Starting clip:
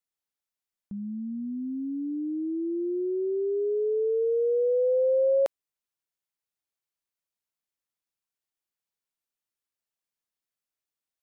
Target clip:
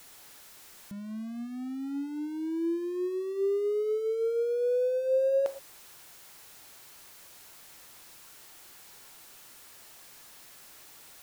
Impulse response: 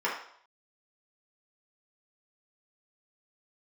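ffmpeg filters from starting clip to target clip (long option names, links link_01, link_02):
-filter_complex "[0:a]aeval=exprs='val(0)+0.5*0.0106*sgn(val(0))':channel_layout=same,asplit=2[link_01][link_02];[1:a]atrim=start_sample=2205,afade=type=out:start_time=0.15:duration=0.01,atrim=end_sample=7056,asetrate=34839,aresample=44100[link_03];[link_02][link_03]afir=irnorm=-1:irlink=0,volume=-19dB[link_04];[link_01][link_04]amix=inputs=2:normalize=0,volume=-5dB"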